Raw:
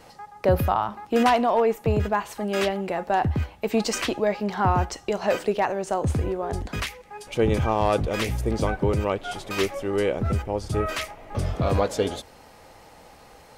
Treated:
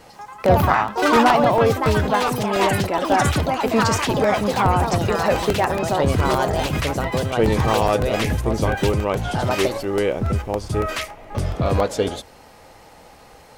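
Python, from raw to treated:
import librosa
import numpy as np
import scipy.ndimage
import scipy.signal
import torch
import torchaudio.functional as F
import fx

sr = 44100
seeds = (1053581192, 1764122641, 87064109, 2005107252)

y = fx.echo_pitch(x, sr, ms=132, semitones=4, count=3, db_per_echo=-3.0)
y = fx.buffer_crackle(y, sr, first_s=0.46, period_s=0.14, block=64, kind='repeat')
y = F.gain(torch.from_numpy(y), 3.0).numpy()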